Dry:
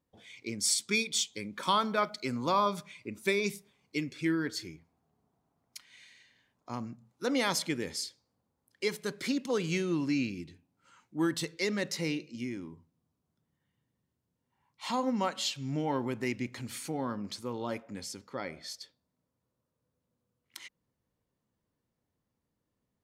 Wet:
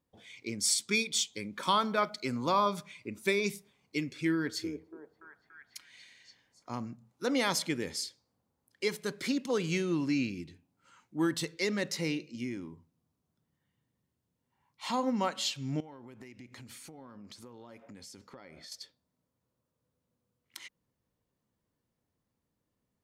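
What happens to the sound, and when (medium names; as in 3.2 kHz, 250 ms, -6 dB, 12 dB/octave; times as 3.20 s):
4.35–6.84 s: repeats whose band climbs or falls 287 ms, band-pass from 410 Hz, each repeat 0.7 oct, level -3.5 dB
15.80–18.72 s: compression 16:1, threshold -45 dBFS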